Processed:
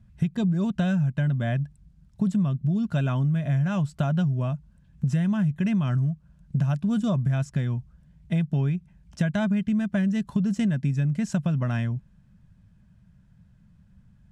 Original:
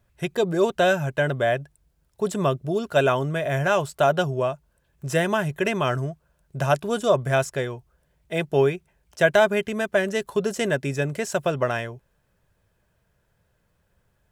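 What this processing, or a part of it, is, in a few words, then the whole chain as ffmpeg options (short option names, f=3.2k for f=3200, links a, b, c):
jukebox: -af "lowpass=7.9k,lowshelf=f=290:t=q:w=3:g=13,acompressor=threshold=-20dB:ratio=6,volume=-2dB"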